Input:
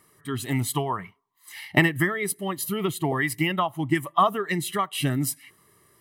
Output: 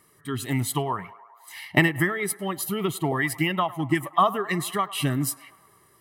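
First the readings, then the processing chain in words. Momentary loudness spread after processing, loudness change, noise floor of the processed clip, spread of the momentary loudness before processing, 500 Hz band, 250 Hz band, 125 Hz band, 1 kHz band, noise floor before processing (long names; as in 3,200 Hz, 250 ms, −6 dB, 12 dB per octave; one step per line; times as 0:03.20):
11 LU, 0.0 dB, −60 dBFS, 11 LU, 0.0 dB, 0.0 dB, 0.0 dB, 0.0 dB, −62 dBFS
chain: feedback echo with a band-pass in the loop 104 ms, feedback 75%, band-pass 990 Hz, level −17.5 dB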